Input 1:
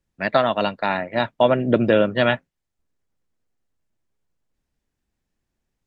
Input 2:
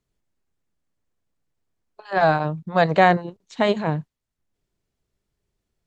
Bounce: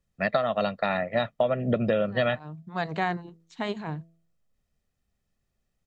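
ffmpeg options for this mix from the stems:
-filter_complex "[0:a]equalizer=f=210:w=1.5:g=4.5,aecho=1:1:1.6:0.63,volume=-3dB,asplit=2[a][b];[1:a]equalizer=f=550:t=o:w=0.36:g=-11.5,bandreject=f=165.5:t=h:w=4,bandreject=f=331:t=h:w=4,bandreject=f=496.5:t=h:w=4,bandreject=f=662:t=h:w=4,volume=-9dB[c];[b]apad=whole_len=258841[d];[c][d]sidechaincompress=threshold=-34dB:ratio=4:attack=16:release=181[e];[a][e]amix=inputs=2:normalize=0,acompressor=threshold=-21dB:ratio=6"

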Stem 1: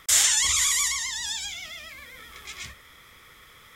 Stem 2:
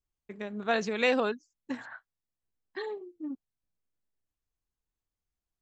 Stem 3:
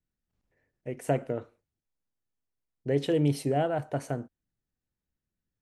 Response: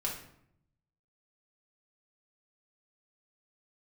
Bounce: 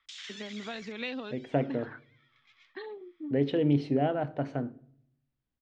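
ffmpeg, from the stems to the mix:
-filter_complex "[0:a]highpass=970,afwtdn=0.0398,acompressor=threshold=-29dB:ratio=4,volume=-5.5dB[a];[1:a]acrossover=split=130|3000[b][c][d];[c]acompressor=threshold=-37dB:ratio=6[e];[b][e][d]amix=inputs=3:normalize=0,volume=-2dB,asplit=2[f][g];[2:a]bandreject=f=54.44:t=h:w=4,bandreject=f=108.88:t=h:w=4,bandreject=f=163.32:t=h:w=4,bandreject=f=217.76:t=h:w=4,bandreject=f=272.2:t=h:w=4,bandreject=f=326.64:t=h:w=4,bandreject=f=381.08:t=h:w=4,bandreject=f=435.52:t=h:w=4,adelay=450,volume=-2.5dB,asplit=2[h][i];[i]volume=-18.5dB[j];[g]apad=whole_len=165473[k];[a][k]sidechaincompress=threshold=-43dB:ratio=8:attack=44:release=320[l];[3:a]atrim=start_sample=2205[m];[j][m]afir=irnorm=-1:irlink=0[n];[l][f][h][n]amix=inputs=4:normalize=0,lowpass=f=4.1k:w=0.5412,lowpass=f=4.1k:w=1.3066,equalizer=f=260:w=3.8:g=7"

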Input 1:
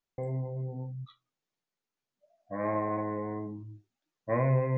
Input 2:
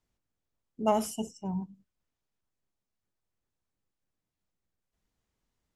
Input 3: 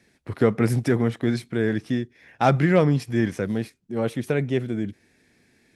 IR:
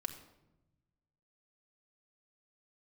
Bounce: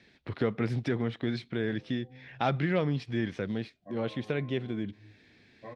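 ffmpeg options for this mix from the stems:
-filter_complex "[0:a]asplit=2[a][b];[b]adelay=11.2,afreqshift=-2.8[c];[a][c]amix=inputs=2:normalize=1,adelay=1350,volume=-8dB,asplit=2[d][e];[e]volume=-8dB[f];[2:a]lowpass=f=3.7k:t=q:w=2.1,volume=-0.5dB[g];[d]acompressor=threshold=-46dB:ratio=6,volume=0dB[h];[3:a]atrim=start_sample=2205[i];[f][i]afir=irnorm=-1:irlink=0[j];[g][h][j]amix=inputs=3:normalize=0,acompressor=threshold=-41dB:ratio=1.5"

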